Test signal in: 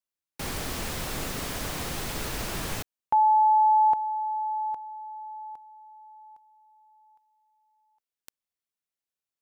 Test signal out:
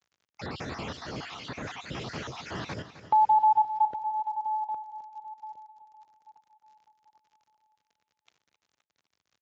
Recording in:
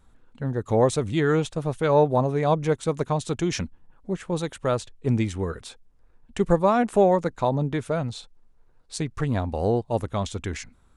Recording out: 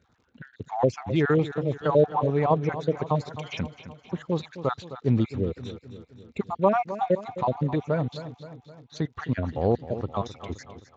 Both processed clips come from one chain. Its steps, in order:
time-frequency cells dropped at random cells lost 47%
low-pass filter 4,500 Hz 12 dB per octave
on a send: repeating echo 261 ms, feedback 54%, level −13 dB
on the sum: surface crackle 54 per second −49 dBFS
Speex 34 kbit/s 16,000 Hz

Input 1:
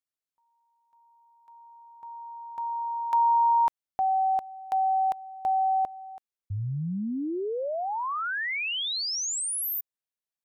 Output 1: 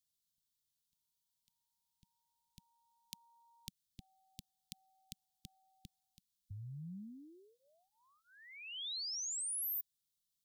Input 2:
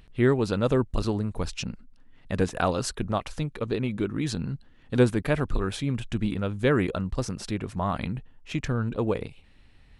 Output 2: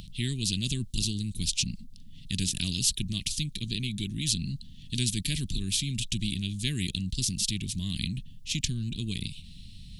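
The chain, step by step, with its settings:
elliptic band-stop filter 190–3,500 Hz, stop band 50 dB
every bin compressed towards the loudest bin 2 to 1
level +8 dB

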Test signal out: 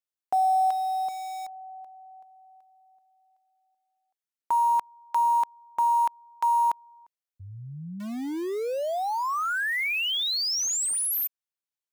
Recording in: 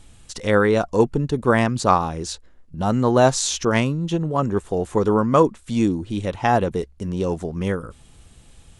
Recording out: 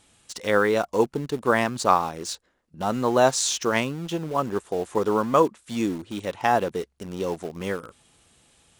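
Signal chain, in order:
high-pass filter 380 Hz 6 dB per octave
in parallel at −10.5 dB: bit reduction 5 bits
on the sum: level −3.5 dB

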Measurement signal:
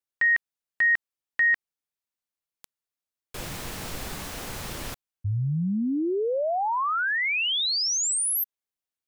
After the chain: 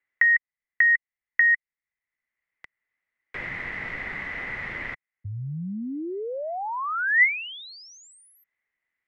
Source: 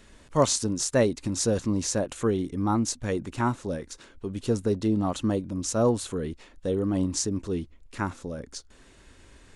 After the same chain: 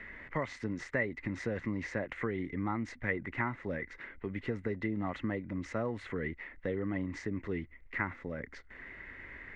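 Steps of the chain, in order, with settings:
downward compressor, threshold −24 dBFS
low-pass with resonance 2,000 Hz, resonance Q 15
multiband upward and downward compressor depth 40%
level −7 dB

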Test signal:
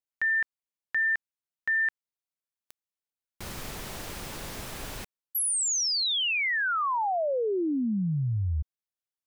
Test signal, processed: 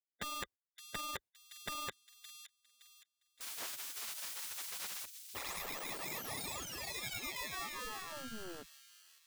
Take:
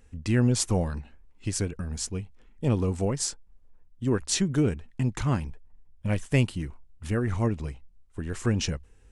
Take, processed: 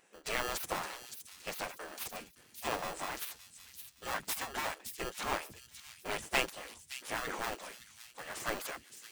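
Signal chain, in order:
lower of the sound and its delayed copy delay 8.4 ms
in parallel at −8 dB: sample-rate reduction 1,500 Hz, jitter 0%
on the sum: gate on every frequency bin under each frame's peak −20 dB weak
delay with a high-pass on its return 567 ms, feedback 37%, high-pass 3,500 Hz, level −7 dB
level +1 dB

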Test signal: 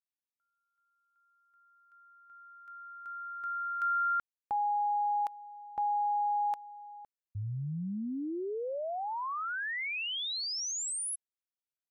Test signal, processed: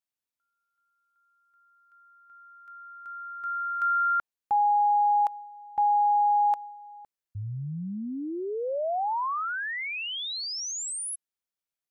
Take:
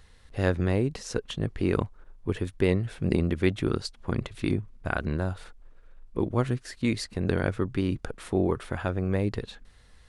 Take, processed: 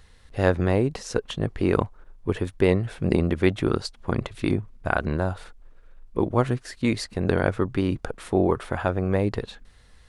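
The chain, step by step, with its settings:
dynamic equaliser 790 Hz, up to +6 dB, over −43 dBFS, Q 0.81
level +2 dB

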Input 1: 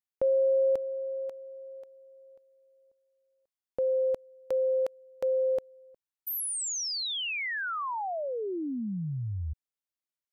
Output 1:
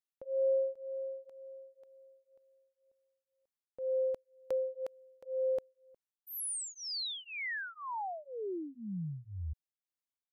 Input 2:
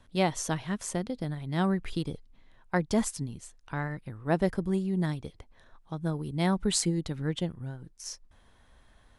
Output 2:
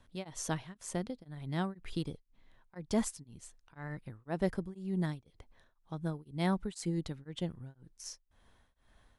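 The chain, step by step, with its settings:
tremolo along a rectified sine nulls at 2 Hz
level −4 dB

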